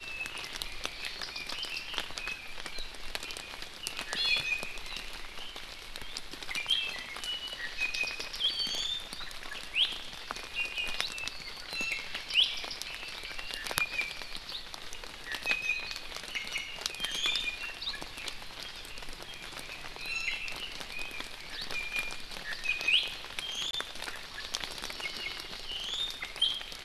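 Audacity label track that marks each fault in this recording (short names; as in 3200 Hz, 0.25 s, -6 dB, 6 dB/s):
23.710000	23.730000	gap 22 ms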